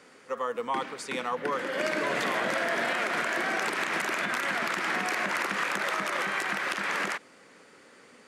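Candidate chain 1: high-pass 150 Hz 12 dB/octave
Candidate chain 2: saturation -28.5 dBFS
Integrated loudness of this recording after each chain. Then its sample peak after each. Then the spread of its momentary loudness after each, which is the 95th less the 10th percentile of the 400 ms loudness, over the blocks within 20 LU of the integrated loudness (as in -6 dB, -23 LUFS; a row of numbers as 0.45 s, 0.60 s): -29.0 LUFS, -32.5 LUFS; -12.0 dBFS, -28.5 dBFS; 5 LU, 4 LU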